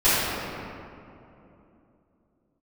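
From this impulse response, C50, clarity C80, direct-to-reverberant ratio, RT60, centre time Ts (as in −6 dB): −4.5 dB, −2.5 dB, −15.0 dB, 2.9 s, 179 ms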